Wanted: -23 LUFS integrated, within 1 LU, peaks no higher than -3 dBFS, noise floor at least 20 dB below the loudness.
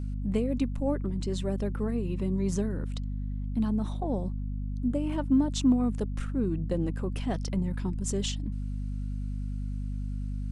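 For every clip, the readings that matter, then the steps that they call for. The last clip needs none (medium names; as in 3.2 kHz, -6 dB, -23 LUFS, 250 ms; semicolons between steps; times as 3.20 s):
hum 50 Hz; highest harmonic 250 Hz; hum level -30 dBFS; loudness -31.0 LUFS; peak level -14.0 dBFS; loudness target -23.0 LUFS
-> de-hum 50 Hz, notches 5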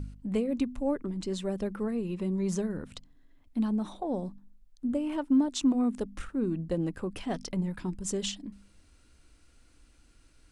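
hum not found; loudness -31.5 LUFS; peak level -17.0 dBFS; loudness target -23.0 LUFS
-> trim +8.5 dB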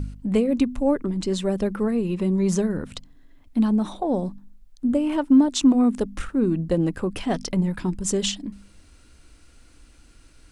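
loudness -23.0 LUFS; peak level -8.5 dBFS; noise floor -53 dBFS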